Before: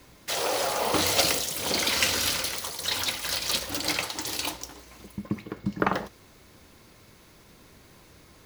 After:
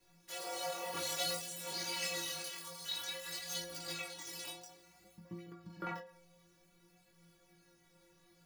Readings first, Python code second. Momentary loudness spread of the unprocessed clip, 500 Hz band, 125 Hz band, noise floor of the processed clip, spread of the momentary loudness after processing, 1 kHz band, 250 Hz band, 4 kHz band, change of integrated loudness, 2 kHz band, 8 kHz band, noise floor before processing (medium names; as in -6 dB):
13 LU, -14.0 dB, -15.0 dB, -69 dBFS, 14 LU, -14.0 dB, -17.0 dB, -13.5 dB, -14.0 dB, -14.5 dB, -13.0 dB, -55 dBFS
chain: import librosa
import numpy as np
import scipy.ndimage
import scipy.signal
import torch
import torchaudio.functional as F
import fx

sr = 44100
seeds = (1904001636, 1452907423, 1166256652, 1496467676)

y = fx.stiff_resonator(x, sr, f0_hz=170.0, decay_s=0.59, stiffness=0.008)
y = fx.chorus_voices(y, sr, voices=2, hz=0.55, base_ms=21, depth_ms=4.4, mix_pct=45)
y = fx.end_taper(y, sr, db_per_s=110.0)
y = y * 10.0 ** (4.0 / 20.0)